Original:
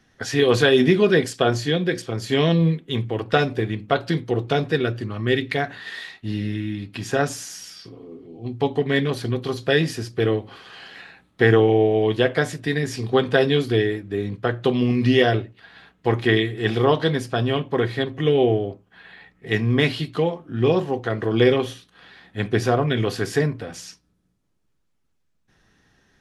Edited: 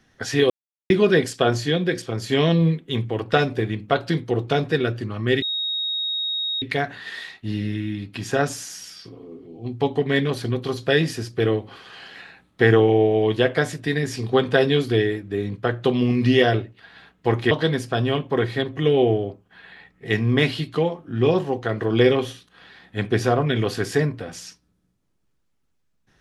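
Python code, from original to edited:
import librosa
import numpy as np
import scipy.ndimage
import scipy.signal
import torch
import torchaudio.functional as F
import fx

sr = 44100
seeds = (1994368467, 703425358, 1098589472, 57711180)

y = fx.edit(x, sr, fx.silence(start_s=0.5, length_s=0.4),
    fx.insert_tone(at_s=5.42, length_s=1.2, hz=3760.0, db=-22.5),
    fx.cut(start_s=16.31, length_s=0.61), tone=tone)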